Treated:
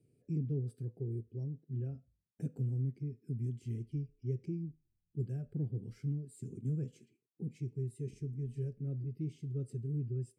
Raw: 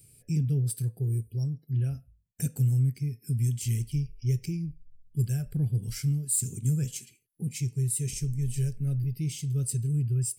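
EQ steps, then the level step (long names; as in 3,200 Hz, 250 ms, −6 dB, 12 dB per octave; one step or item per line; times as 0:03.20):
resonant band-pass 340 Hz, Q 1.4
0.0 dB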